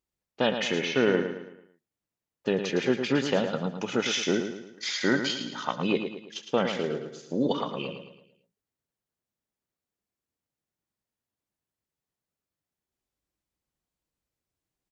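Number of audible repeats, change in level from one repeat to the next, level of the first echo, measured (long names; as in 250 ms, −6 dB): 4, −7.5 dB, −8.0 dB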